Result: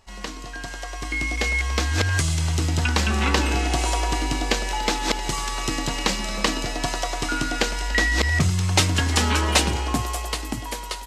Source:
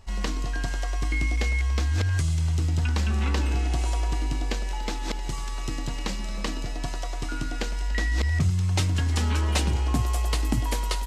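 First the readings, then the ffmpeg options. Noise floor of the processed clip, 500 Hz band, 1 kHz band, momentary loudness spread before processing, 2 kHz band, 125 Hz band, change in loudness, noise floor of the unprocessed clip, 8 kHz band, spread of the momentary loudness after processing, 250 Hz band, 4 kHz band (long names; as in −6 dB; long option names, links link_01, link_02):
−35 dBFS, +8.0 dB, +8.5 dB, 8 LU, +9.0 dB, 0.0 dB, +4.0 dB, −30 dBFS, +9.5 dB, 10 LU, +5.0 dB, +9.5 dB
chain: -af "dynaudnorm=framelen=130:gausssize=21:maxgain=12.5dB,lowshelf=frequency=190:gain=-12"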